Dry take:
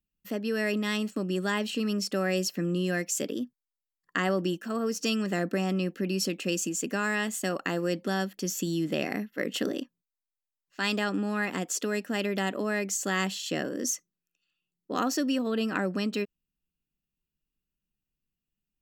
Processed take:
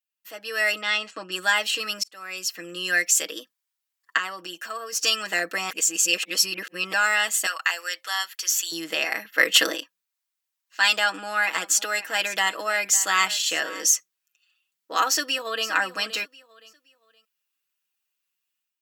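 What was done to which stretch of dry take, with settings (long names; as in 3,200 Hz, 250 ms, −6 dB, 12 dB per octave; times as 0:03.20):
0:00.81–0:01.32: high-frequency loss of the air 110 metres
0:02.03–0:02.94: fade in
0:04.17–0:04.93: downward compressor 2 to 1, threshold −37 dBFS
0:05.70–0:06.93: reverse
0:07.46–0:08.72: high-pass filter 1,100 Hz
0:09.25–0:09.76: clip gain +7.5 dB
0:10.98–0:13.87: single-tap delay 553 ms −16.5 dB
0:15.09–0:15.68: delay throw 520 ms, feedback 30%, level −13.5 dB
whole clip: high-pass filter 1,000 Hz 12 dB per octave; comb filter 6.2 ms, depth 72%; automatic gain control gain up to 9.5 dB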